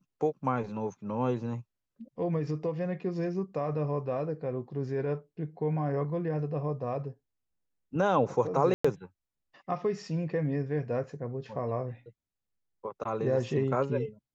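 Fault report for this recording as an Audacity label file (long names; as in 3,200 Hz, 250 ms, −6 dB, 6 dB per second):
8.740000	8.850000	drop-out 105 ms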